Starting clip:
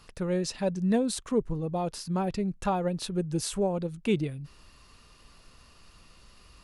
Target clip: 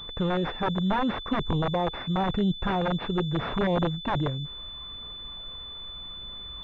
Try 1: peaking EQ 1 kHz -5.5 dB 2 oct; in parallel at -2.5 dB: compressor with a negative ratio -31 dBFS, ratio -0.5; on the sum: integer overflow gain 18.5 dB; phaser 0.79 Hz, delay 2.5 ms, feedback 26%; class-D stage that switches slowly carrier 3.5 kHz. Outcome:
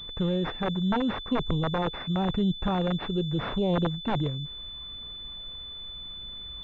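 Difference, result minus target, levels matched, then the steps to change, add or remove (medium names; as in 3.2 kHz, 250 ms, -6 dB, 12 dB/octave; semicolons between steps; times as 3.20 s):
1 kHz band -3.0 dB
change: peaking EQ 1 kHz +2 dB 2 oct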